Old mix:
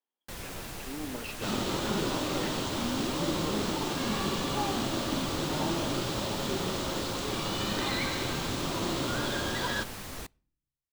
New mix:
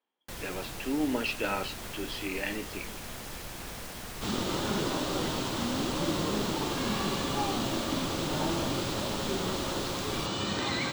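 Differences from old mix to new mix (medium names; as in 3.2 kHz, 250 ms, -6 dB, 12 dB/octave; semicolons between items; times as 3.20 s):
speech +10.0 dB; second sound: entry +2.80 s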